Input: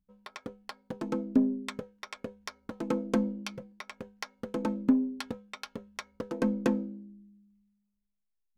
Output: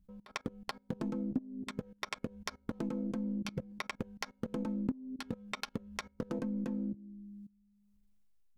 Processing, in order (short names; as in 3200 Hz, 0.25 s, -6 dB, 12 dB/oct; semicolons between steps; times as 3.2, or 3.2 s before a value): dynamic EQ 390 Hz, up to -6 dB, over -46 dBFS, Q 4.1; level quantiser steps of 21 dB; low shelf 260 Hz +11.5 dB; compressor 8:1, threshold -40 dBFS, peak gain reduction 24 dB; gain +7 dB